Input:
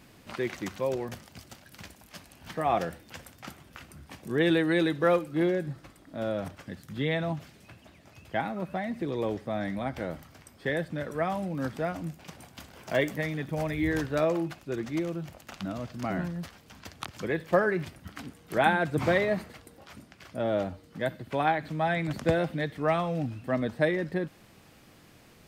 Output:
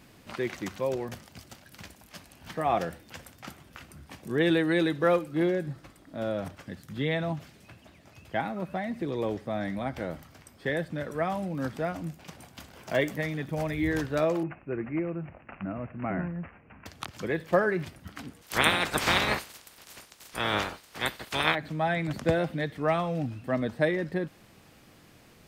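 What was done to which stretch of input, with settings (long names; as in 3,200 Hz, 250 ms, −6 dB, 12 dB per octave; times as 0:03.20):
0:14.43–0:16.86: Butterworth low-pass 2,700 Hz 96 dB per octave
0:18.41–0:21.54: ceiling on every frequency bin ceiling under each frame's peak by 29 dB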